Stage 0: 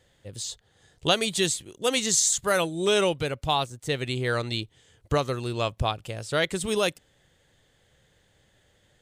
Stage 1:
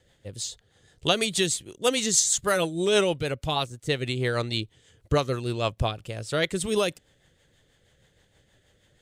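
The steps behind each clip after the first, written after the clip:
rotating-speaker cabinet horn 6.3 Hz
level +2.5 dB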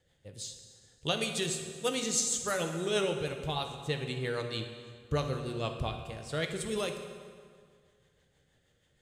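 convolution reverb RT60 2.0 s, pre-delay 3 ms, DRR 4 dB
level −9 dB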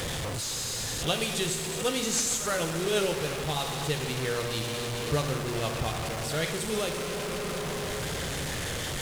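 linear delta modulator 64 kbit/s, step −29.5 dBFS
background noise pink −49 dBFS
echo ahead of the sound 69 ms −13.5 dB
level +2.5 dB

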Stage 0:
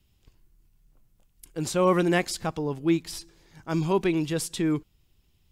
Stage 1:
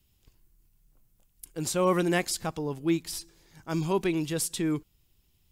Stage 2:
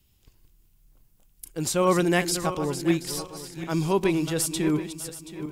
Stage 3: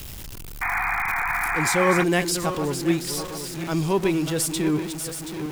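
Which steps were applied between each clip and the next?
high-shelf EQ 7,000 Hz +9.5 dB; level −3 dB
feedback delay that plays each chunk backwards 364 ms, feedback 55%, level −9.5 dB; level +3.5 dB
converter with a step at zero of −31 dBFS; sound drawn into the spectrogram noise, 0:00.61–0:02.04, 690–2,500 Hz −25 dBFS

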